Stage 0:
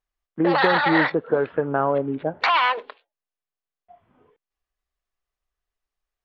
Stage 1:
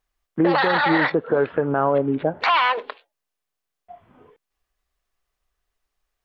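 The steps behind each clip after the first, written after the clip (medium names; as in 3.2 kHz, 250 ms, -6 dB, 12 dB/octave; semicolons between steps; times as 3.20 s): in parallel at +3 dB: compression, threshold -28 dBFS, peak gain reduction 13.5 dB; on the sum: peak limiter -9.5 dBFS, peak gain reduction 7.5 dB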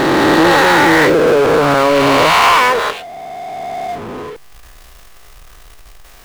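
reverse spectral sustain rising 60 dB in 2.72 s; power-law waveshaper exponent 0.5; trim -1 dB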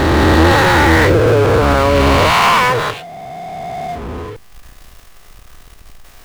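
octave divider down 2 oct, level +4 dB; trim -1.5 dB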